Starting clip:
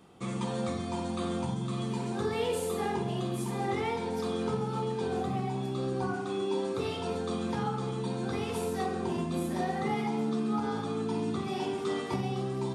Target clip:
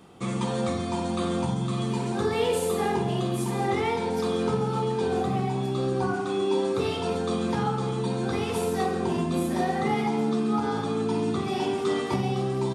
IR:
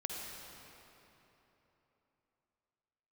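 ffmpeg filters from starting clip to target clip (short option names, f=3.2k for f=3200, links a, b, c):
-af "aecho=1:1:166:0.158,volume=5.5dB"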